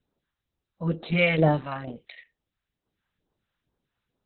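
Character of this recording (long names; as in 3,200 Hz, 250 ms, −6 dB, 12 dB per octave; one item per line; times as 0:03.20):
phaser sweep stages 2, 2.2 Hz, lowest notch 340–2,200 Hz
Opus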